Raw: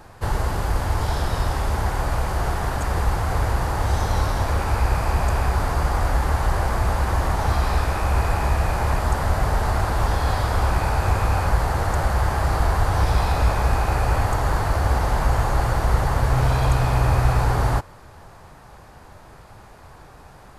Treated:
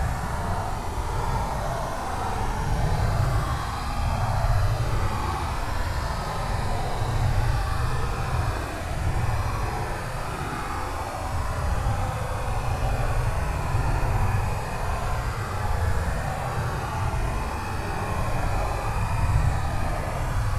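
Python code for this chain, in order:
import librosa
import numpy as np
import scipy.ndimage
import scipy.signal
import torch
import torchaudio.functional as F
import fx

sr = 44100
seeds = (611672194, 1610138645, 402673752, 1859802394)

y = fx.cvsd(x, sr, bps=64000)
y = y * np.sin(2.0 * np.pi * 35.0 * np.arange(len(y)) / sr)
y = fx.paulstretch(y, sr, seeds[0], factor=16.0, window_s=0.05, from_s=7.31)
y = y * librosa.db_to_amplitude(-2.0)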